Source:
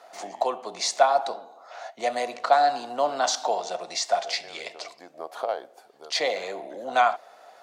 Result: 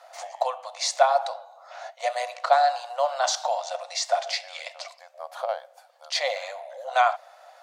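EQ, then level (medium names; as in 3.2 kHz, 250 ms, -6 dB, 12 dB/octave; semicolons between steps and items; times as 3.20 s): brick-wall FIR high-pass 500 Hz; 0.0 dB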